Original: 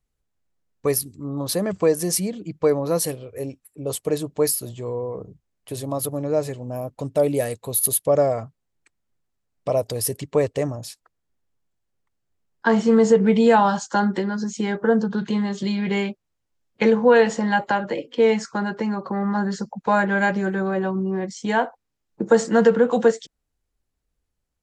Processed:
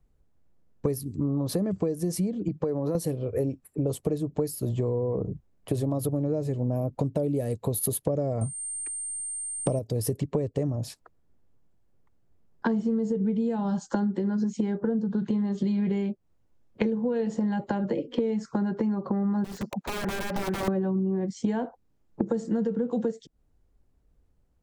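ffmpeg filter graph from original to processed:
-filter_complex "[0:a]asettb=1/sr,asplit=3[s0][s1][s2];[s0]atrim=end=2.484[s3];[s1]atrim=start=2.48:end=2.95,asetpts=PTS-STARTPTS,afade=t=in:d=0.004:c=qsin,afade=t=out:st=0.466:d=0.004:c=qsin,highpass=100,bandreject=f=2200:w=12,acompressor=threshold=0.0316:ratio=3:attack=3.2:release=140:knee=1:detection=peak[s4];[s2]atrim=start=2.946[s5];[s3][s4]acrossfade=d=0.004:c1=hsin:c2=qsin[s6];[s6][s5]acrossfade=d=0.004:c1=qsin:c2=hsin,asettb=1/sr,asplit=3[s7][s8][s9];[s7]atrim=end=8.414[s10];[s8]atrim=start=8.41:end=9.79,asetpts=PTS-STARTPTS,afade=t=in:d=0.004:c=qsin,afade=t=out:st=1.376:d=0.004:c=qsin,acontrast=34,aeval=exprs='val(0)+0.0398*sin(2*PI*8700*n/s)':c=same[s11];[s9]atrim=start=9.786[s12];[s10][s11]acrossfade=d=0.004:c1=hsin:c2=qsin[s13];[s13][s12]acrossfade=d=0.004:c1=qsin:c2=hsin,asettb=1/sr,asplit=3[s14][s15][s16];[s14]atrim=end=19.444[s17];[s15]atrim=start=19.44:end=20.68,asetpts=PTS-STARTPTS,afade=t=in:d=0.004:c=qsin,afade=t=out:st=1.236:d=0.004:c=qsin,highpass=f=610:p=1,acompressor=threshold=0.0355:ratio=16:attack=3.2:release=140:knee=1:detection=peak,aeval=exprs='(mod(29.9*val(0)+1,2)-1)/29.9':c=same[s18];[s16]atrim=start=20.676[s19];[s17][s18]acrossfade=d=0.004:c1=hsin:c2=qsin[s20];[s20][s19]acrossfade=d=0.004:c1=qsin:c2=hsin,acrossover=split=390|3000[s21][s22][s23];[s22]acompressor=threshold=0.0141:ratio=2[s24];[s21][s24][s23]amix=inputs=3:normalize=0,tiltshelf=f=1200:g=8,acompressor=threshold=0.0398:ratio=16,volume=1.68"

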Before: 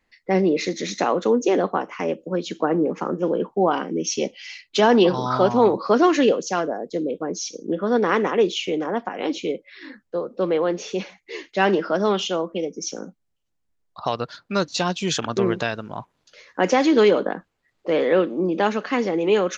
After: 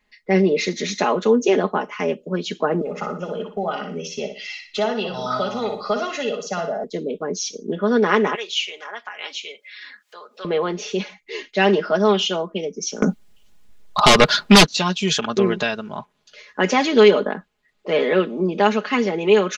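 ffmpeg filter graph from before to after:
-filter_complex "[0:a]asettb=1/sr,asplit=3[s0][s1][s2];[s0]atrim=end=2.814[s3];[s1]atrim=start=2.81:end=6.84,asetpts=PTS-STARTPTS,afade=t=in:d=0.004:c=qsin,afade=t=out:st=4.026:d=0.004:c=qsin,acrossover=split=490|1700[s4][s5][s6];[s4]acompressor=threshold=0.0316:ratio=4[s7];[s5]acompressor=threshold=0.0316:ratio=4[s8];[s6]acompressor=threshold=0.0126:ratio=4[s9];[s7][s8][s9]amix=inputs=3:normalize=0,aecho=1:1:1.5:0.61,atrim=end_sample=177723,aecho=1:1:60|120|180|240:0.422|0.131|0.0405|0.0126,atrim=end_sample=177723[s10];[s2]atrim=start=6.836[s11];[s3][s10]acrossfade=d=0.004:c1=hsin:c2=qsin[s12];[s12][s11]acrossfade=d=0.004:c1=qsin:c2=hsin,asettb=1/sr,asplit=3[s13][s14][s15];[s13]atrim=end=8.354[s16];[s14]atrim=start=8.35:end=10.45,asetpts=PTS-STARTPTS,afade=t=in:d=0.004:c=qsin,afade=t=out:st=2.096:d=0.004:c=qsin,highpass=1300,acompressor=mode=upward:threshold=0.0126:ratio=2.5:attack=3.2:release=140:knee=2.83:detection=peak[s17];[s15]atrim=start=10.446[s18];[s16][s17]acrossfade=d=0.004:c1=hsin:c2=qsin[s19];[s19][s18]acrossfade=d=0.004:c1=qsin:c2=hsin,asettb=1/sr,asplit=3[s20][s21][s22];[s20]atrim=end=13.024[s23];[s21]atrim=start=13.02:end=14.66,asetpts=PTS-STARTPTS,afade=t=in:d=0.004:c=qsin,afade=t=out:st=1.636:d=0.004:c=qsin,asubboost=boost=3.5:cutoff=59,aeval=exprs='0.398*sin(PI/2*5.62*val(0)/0.398)':c=same[s24];[s22]atrim=start=14.656[s25];[s23][s24]acrossfade=d=0.004:c1=hsin:c2=qsin[s26];[s26][s25]acrossfade=d=0.004:c1=qsin:c2=hsin,equalizer=f=3100:w=1.2:g=4,aecho=1:1:4.8:0.65"

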